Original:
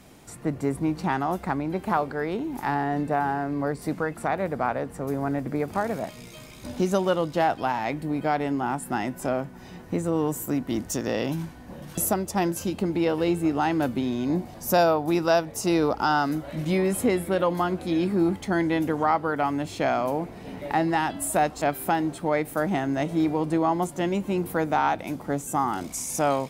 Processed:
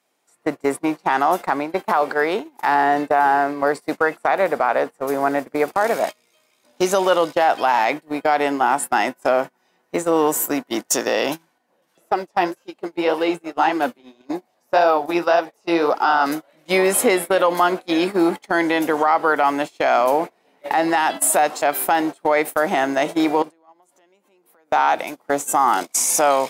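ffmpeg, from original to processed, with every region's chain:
-filter_complex "[0:a]asettb=1/sr,asplit=3[a][b][c];[a]atrim=end=11.584[d];[b]atrim=start=11.58:end=16.26,asetpts=PTS-STARTPTS,afade=t=in:d=0.004:c=qsin,afade=t=out:st=4.676:d=0.004:c=qsin,acrossover=split=3600[e][f];[f]acompressor=threshold=-47dB:ratio=4:attack=1:release=60[g];[e][g]amix=inputs=2:normalize=0,flanger=delay=2.4:depth=9.4:regen=41:speed=1.8:shape=sinusoidal[h];[c]atrim=start=16.256[i];[d][h]acrossfade=d=0.004:c1=hsin:c2=qsin[j];[j][i]acrossfade=d=0.004:c1=qsin:c2=hsin,asettb=1/sr,asplit=3[k][l][m];[k]atrim=end=23.424[n];[l]atrim=start=23.42:end=24.72,asetpts=PTS-STARTPTS,afade=t=in:d=0.004:c=qsin,afade=t=out:st=1.296:d=0.004:c=qsin,highpass=170,acompressor=threshold=-34dB:ratio=12:attack=3.2:release=140:knee=1:detection=peak[o];[m]atrim=start=24.716[p];[n][o]acrossfade=d=0.004:c1=hsin:c2=qsin[q];[q][p]acrossfade=d=0.004:c1=qsin:c2=hsin,highpass=500,agate=range=-28dB:threshold=-35dB:ratio=16:detection=peak,alimiter=level_in=19dB:limit=-1dB:release=50:level=0:latency=1,volume=-6dB"

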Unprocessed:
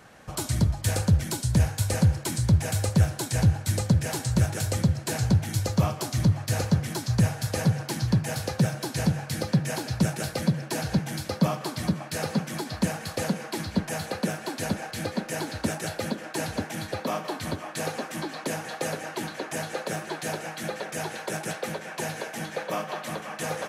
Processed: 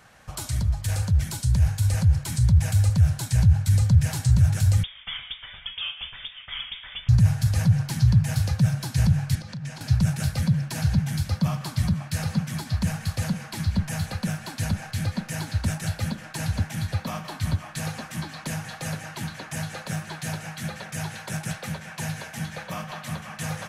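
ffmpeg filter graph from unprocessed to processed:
-filter_complex "[0:a]asettb=1/sr,asplit=3[a][b][c];[a]atrim=end=4.834[d];[b]atrim=start=4.83:end=7.09,asetpts=PTS-STARTPTS,afade=t=in:d=0.004:c=qsin,afade=t=out:st=2.256:d=0.004:c=qsin,highpass=f=350:w=0.5412,highpass=f=350:w=1.3066,lowpass=f=3.2k:t=q:w=0.5098,lowpass=f=3.2k:t=q:w=0.6013,lowpass=f=3.2k:t=q:w=0.9,lowpass=f=3.2k:t=q:w=2.563,afreqshift=-3800[e];[c]atrim=start=7.086[f];[d][e]acrossfade=d=0.004:c1=hsin:c2=qsin[g];[g][f]acrossfade=d=0.004:c1=qsin:c2=hsin,asettb=1/sr,asplit=3[h][i][j];[h]atrim=end=9.354[k];[i]atrim=start=9.35:end=9.81,asetpts=PTS-STARTPTS,afade=t=in:d=0.004:c=qsin,afade=t=out:st=0.456:d=0.004:c=qsin,highpass=160,lowpass=7.1k,acompressor=threshold=-34dB:ratio=12:attack=3.2:release=140:knee=1:detection=peak,asplit=2[l][m];[m]adelay=34,volume=-14dB[n];[l][n]amix=inputs=2:normalize=0,atrim=end_sample=20286[o];[j]atrim=start=9.806[p];[k][o]acrossfade=d=0.004:c1=hsin:c2=qsin[q];[q][p]acrossfade=d=0.004:c1=qsin:c2=hsin,equalizer=f=350:t=o:w=1.7:g=-8,alimiter=limit=-21.5dB:level=0:latency=1:release=35,asubboost=boost=8.5:cutoff=130"

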